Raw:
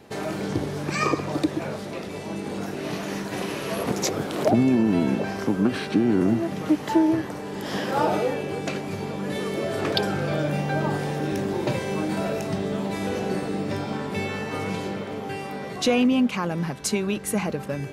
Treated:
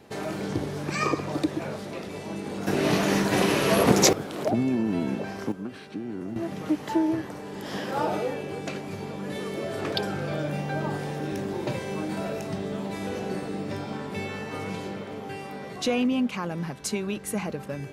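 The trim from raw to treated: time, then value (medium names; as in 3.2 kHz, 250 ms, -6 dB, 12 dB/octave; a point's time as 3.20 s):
-2.5 dB
from 2.67 s +7 dB
from 4.13 s -5.5 dB
from 5.52 s -14 dB
from 6.36 s -4.5 dB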